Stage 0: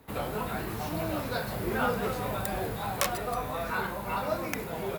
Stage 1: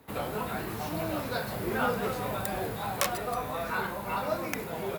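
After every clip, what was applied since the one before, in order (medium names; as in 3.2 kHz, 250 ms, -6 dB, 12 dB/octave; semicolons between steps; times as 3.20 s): high-pass 85 Hz 6 dB/octave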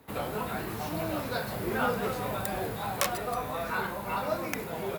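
no audible change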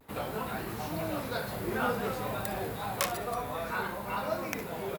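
early reflections 60 ms -15.5 dB, 71 ms -18 dB; vibrato 0.52 Hz 34 cents; trim -2 dB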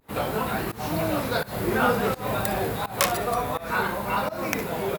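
volume shaper 84 bpm, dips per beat 1, -21 dB, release 217 ms; trim +8.5 dB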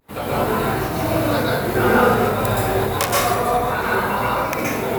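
plate-style reverb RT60 0.94 s, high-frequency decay 0.6×, pre-delay 110 ms, DRR -5.5 dB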